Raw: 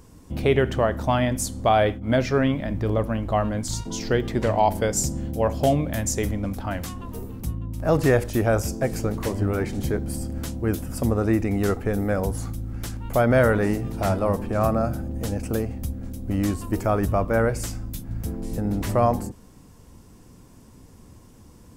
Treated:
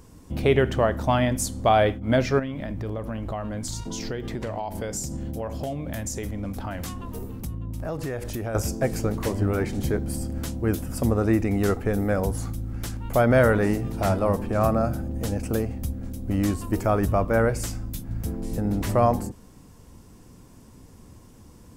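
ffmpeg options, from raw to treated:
-filter_complex "[0:a]asettb=1/sr,asplit=3[s0][s1][s2];[s0]atrim=end=2.394[s3];[s1]atrim=start=2.39:end=8.55,asetpts=PTS-STARTPTS,afade=t=in:d=0.004:c=qsin,afade=t=out:st=6.156:d=0.004:c=qsin,acompressor=threshold=0.0447:ratio=6:attack=3.2:release=140:knee=1:detection=peak[s4];[s2]atrim=start=8.546[s5];[s3][s4]acrossfade=d=0.004:c1=hsin:c2=qsin[s6];[s6][s5]acrossfade=d=0.004:c1=qsin:c2=hsin"

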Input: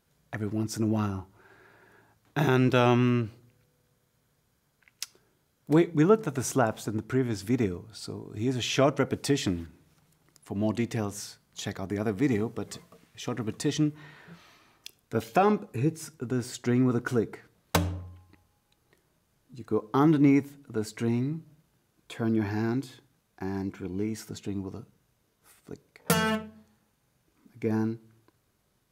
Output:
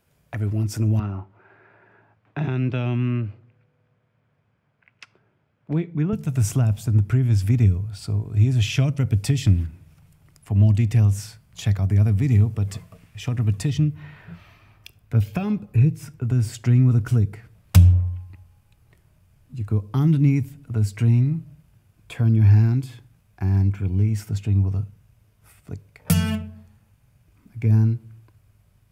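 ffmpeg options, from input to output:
-filter_complex "[0:a]asettb=1/sr,asplit=3[s0][s1][s2];[s0]atrim=end=0.994[s3];[s1]atrim=start=0.99:end=6.13,asetpts=PTS-STARTPTS,afade=t=in:d=0.004:c=qsin,afade=t=out:st=5.136:d=0.004:c=qsin,highpass=190,lowpass=2300[s4];[s2]atrim=start=6.126[s5];[s3][s4]acrossfade=d=0.004:c1=hsin:c2=qsin[s6];[s6][s5]acrossfade=d=0.004:c1=qsin:c2=hsin,asettb=1/sr,asplit=3[s7][s8][s9];[s7]atrim=end=13.704[s10];[s8]atrim=start=13.7:end=16.25,asetpts=PTS-STARTPTS,afade=t=in:d=0.004:c=qsin,afade=t=out:st=2.546:d=0.004:c=qsin,equalizer=f=8400:t=o:w=1.5:g=-7[s11];[s9]atrim=start=16.246[s12];[s10][s11]acrossfade=d=0.004:c1=hsin:c2=qsin[s13];[s13][s12]acrossfade=d=0.004:c1=qsin:c2=hsin,equalizer=f=100:t=o:w=0.33:g=9,equalizer=f=630:t=o:w=0.33:g=4,equalizer=f=2500:t=o:w=0.33:g=5,equalizer=f=4000:t=o:w=0.33:g=-5,equalizer=f=6300:t=o:w=0.33:g=-4,acrossover=split=270|3000[s14][s15][s16];[s15]acompressor=threshold=0.0141:ratio=6[s17];[s14][s17][s16]amix=inputs=3:normalize=0,asubboost=boost=5:cutoff=140,volume=1.5"

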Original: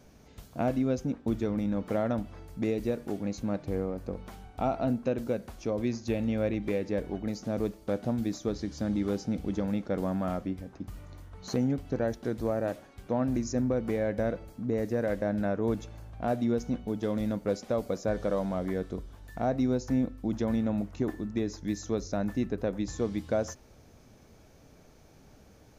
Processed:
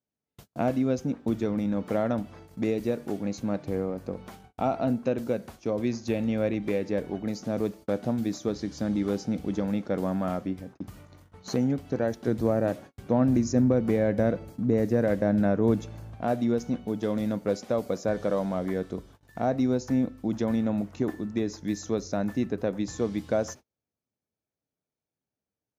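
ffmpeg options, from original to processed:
-filter_complex "[0:a]asettb=1/sr,asplit=3[s0][s1][s2];[s0]atrim=end=12.274[s3];[s1]atrim=start=12.27:end=16.15,asetpts=PTS-STARTPTS,afade=t=in:d=0.004:c=qsin,afade=t=out:st=3.876:d=0.004:c=qsin,lowshelf=f=320:g=7[s4];[s2]atrim=start=16.146[s5];[s3][s4]acrossfade=d=0.004:c1=hsin:c2=qsin[s6];[s6][s5]acrossfade=d=0.004:c1=qsin:c2=hsin,agate=range=0.0141:threshold=0.00562:ratio=16:detection=peak,highpass=98,volume=1.33"

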